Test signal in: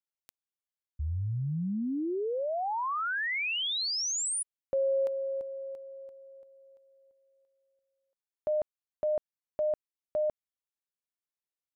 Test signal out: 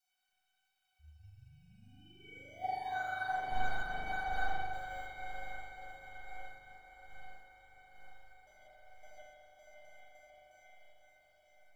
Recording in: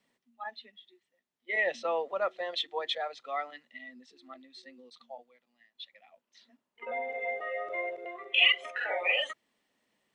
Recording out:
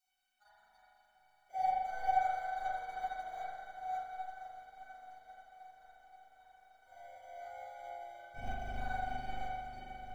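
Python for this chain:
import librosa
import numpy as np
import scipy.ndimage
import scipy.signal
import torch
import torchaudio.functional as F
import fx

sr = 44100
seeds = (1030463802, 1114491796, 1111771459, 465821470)

p1 = fx.reverse_delay(x, sr, ms=306, wet_db=-2.0)
p2 = fx.low_shelf(p1, sr, hz=390.0, db=-7.0)
p3 = fx.level_steps(p2, sr, step_db=20)
p4 = p2 + (p3 * 10.0 ** (-2.5 / 20.0))
p5 = fx.sample_hold(p4, sr, seeds[0], rate_hz=2700.0, jitter_pct=0)
p6 = fx.dmg_noise_colour(p5, sr, seeds[1], colour='blue', level_db=-48.0)
p7 = 10.0 ** (-21.0 / 20.0) * np.tanh(p6 / 10.0 ** (-21.0 / 20.0))
p8 = fx.high_shelf(p7, sr, hz=7300.0, db=-11.0)
p9 = fx.comb_fb(p8, sr, f0_hz=760.0, decay_s=0.35, harmonics='all', damping=0.3, mix_pct=100)
p10 = p9 + fx.echo_diffused(p9, sr, ms=535, feedback_pct=79, wet_db=-8.5, dry=0)
p11 = fx.rev_spring(p10, sr, rt60_s=1.7, pass_ms=(40,), chirp_ms=55, drr_db=-8.0)
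p12 = fx.upward_expand(p11, sr, threshold_db=-56.0, expansion=1.5)
y = p12 * 10.0 ** (8.0 / 20.0)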